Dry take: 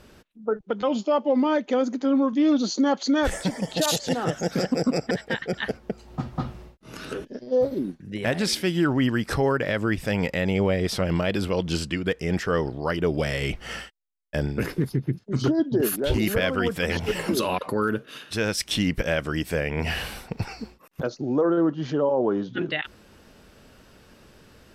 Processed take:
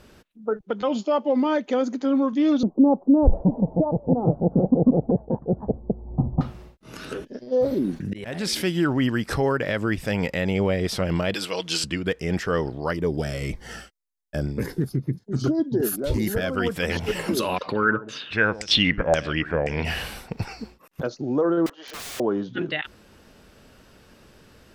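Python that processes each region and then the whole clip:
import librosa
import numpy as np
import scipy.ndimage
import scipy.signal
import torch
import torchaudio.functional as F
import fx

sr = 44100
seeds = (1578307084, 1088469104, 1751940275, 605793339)

y = fx.chain(x, sr, fx.steep_lowpass(hz=980.0, slope=48),
    fx.tilt_eq(slope=-3.0), at=(2.63, 6.41))
y = fx.chain(y, sr, fx.auto_swell(attack_ms=679.0),
    fx.env_flatten(amount_pct=50), at=(7.59, 8.64))
y = fx.chain(y, sr, fx.highpass(hz=760.0, slope=6),
    fx.peak_eq(hz=6000.0, db=7.0, octaves=3.0),
    fx.comb(ms=6.3, depth=0.49), at=(11.34, 11.84))
y = fx.chain(y, sr, fx.peak_eq(hz=2800.0, db=-8.0, octaves=0.69),
    fx.notch_cascade(direction='falling', hz=1.9), at=(12.93, 16.57))
y = fx.chain(y, sr, fx.echo_single(ms=137, db=-15.5),
    fx.filter_lfo_lowpass(shape='saw_down', hz=1.9, low_hz=690.0, high_hz=7400.0, q=4.9), at=(17.56, 19.85))
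y = fx.chain(y, sr, fx.highpass(hz=500.0, slope=24),
    fx.overflow_wrap(gain_db=31.5), at=(21.66, 22.2))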